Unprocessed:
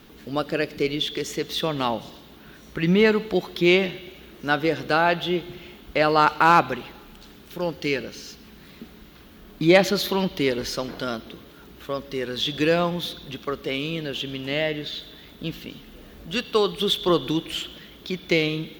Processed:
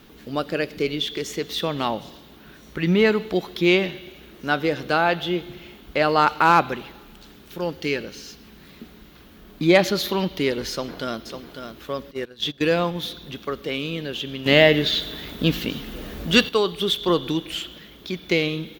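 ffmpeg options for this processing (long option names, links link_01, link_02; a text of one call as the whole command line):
ffmpeg -i in.wav -filter_complex "[0:a]asplit=2[link_01][link_02];[link_02]afade=type=in:start_time=10.7:duration=0.01,afade=type=out:start_time=11.26:duration=0.01,aecho=0:1:550|1100:0.398107|0.0597161[link_03];[link_01][link_03]amix=inputs=2:normalize=0,asettb=1/sr,asplit=3[link_04][link_05][link_06];[link_04]atrim=end=12.114[link_07];[link_05]atrim=start=12.11:end=12.96,asetpts=PTS-STARTPTS,afade=type=in:duration=0.004:curve=qsin,afade=type=out:start_time=0.846:duration=0.004:curve=qsin,agate=range=-18dB:threshold=-28dB:ratio=16:release=100:detection=peak[link_08];[link_06]atrim=start=12.956[link_09];[link_07][link_08]acrossfade=duration=0.004:curve1=hsin:curve2=qsin[link_10];[link_10][link_09]acrossfade=duration=0.004:curve1=qsin:curve2=hsin,asplit=3[link_11][link_12][link_13];[link_11]atrim=end=14.462[link_14];[link_12]atrim=start=14.458:end=16.492,asetpts=PTS-STARTPTS,volume=10.5dB[link_15];[link_13]atrim=start=16.488[link_16];[link_14][link_15]acrossfade=duration=0.004:curve1=hsin:curve2=hsin[link_17];[link_17][link_16]acrossfade=duration=0.004:curve1=hsin:curve2=hsin" out.wav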